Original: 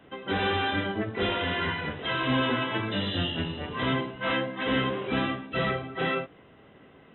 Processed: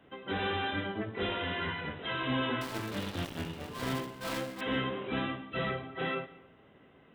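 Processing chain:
0:02.61–0:04.61: gap after every zero crossing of 0.21 ms
dense smooth reverb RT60 0.75 s, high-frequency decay 0.7×, pre-delay 120 ms, DRR 17.5 dB
level −6 dB

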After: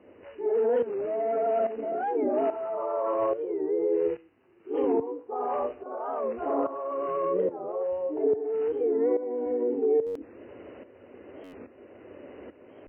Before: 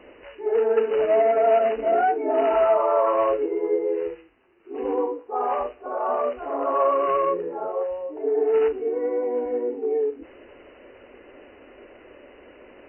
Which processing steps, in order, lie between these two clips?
brickwall limiter −21.5 dBFS, peak gain reduction 11.5 dB
high-shelf EQ 2,100 Hz −10 dB, from 0:04.09 −3.5 dB, from 0:05.13 −9 dB
shaped tremolo saw up 1.2 Hz, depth 75%
high-pass filter 86 Hz 24 dB per octave
low-shelf EQ 320 Hz +9.5 dB
buffer that repeats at 0:10.06/0:11.44, samples 512, times 8
wow of a warped record 45 rpm, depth 160 cents
level +2 dB

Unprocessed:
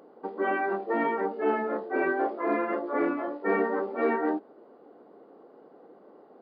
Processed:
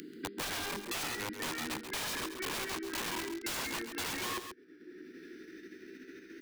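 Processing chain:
pitch glide at a constant tempo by +4.5 semitones starting unshifted
elliptic band-stop filter 350–1,700 Hz, stop band 40 dB
in parallel at −3 dB: output level in coarse steps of 22 dB
on the sum: wrap-around overflow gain 30 dB
on a send: single-tap delay 135 ms −10.5 dB
on the sum: multiband upward and downward compressor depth 70%
level −2.5 dB

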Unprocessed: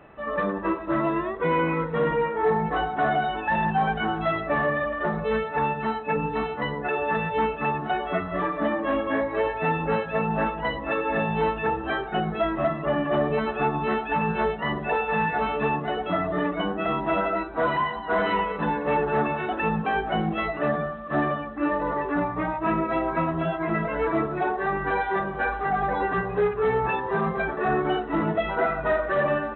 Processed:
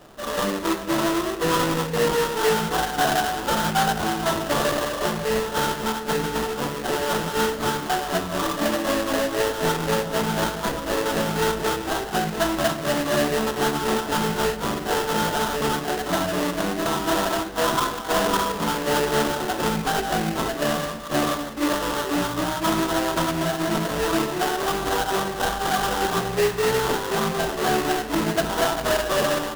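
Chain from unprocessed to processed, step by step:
sample-rate reduction 2,300 Hz, jitter 20%
on a send: convolution reverb RT60 1.3 s, pre-delay 3 ms, DRR 11.5 dB
on the sum: level +1.5 dB

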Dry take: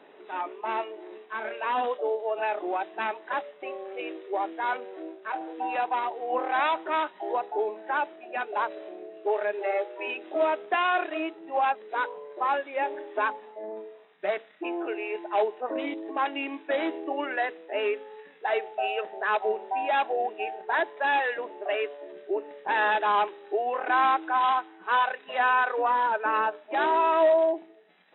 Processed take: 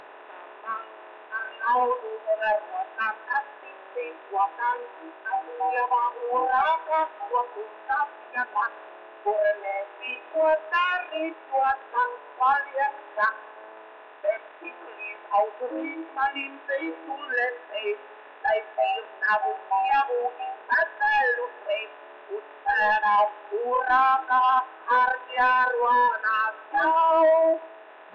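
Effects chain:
compressor on every frequency bin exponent 0.2
noise reduction from a noise print of the clip's start 29 dB
on a send at −21.5 dB: convolution reverb RT60 1.3 s, pre-delay 12 ms
on the sum: mid-hump overdrive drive 9 dB, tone 2,200 Hz, clips at −10.5 dBFS

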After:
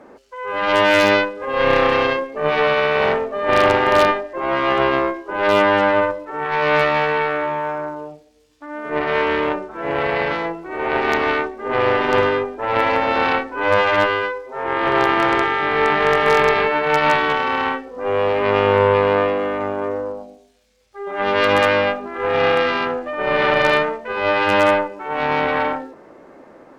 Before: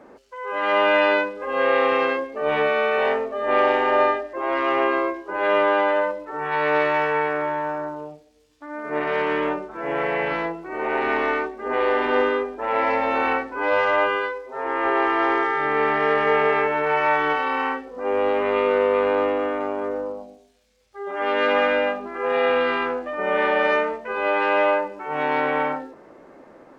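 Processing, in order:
wave folding −10 dBFS
harmonic generator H 2 −7 dB, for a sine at −10 dBFS
level +3 dB

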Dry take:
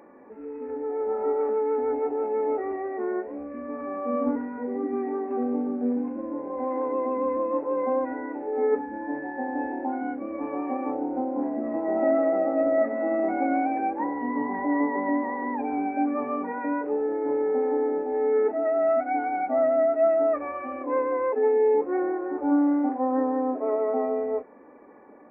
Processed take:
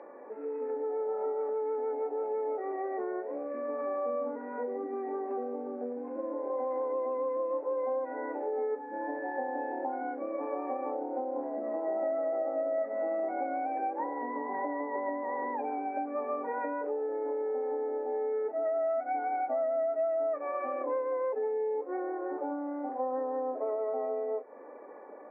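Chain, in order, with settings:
parametric band 530 Hz +6 dB 0.9 octaves
downward compressor 6 to 1, threshold −30 dBFS, peak gain reduction 15 dB
band-pass filter 420–2,200 Hz
level +1.5 dB

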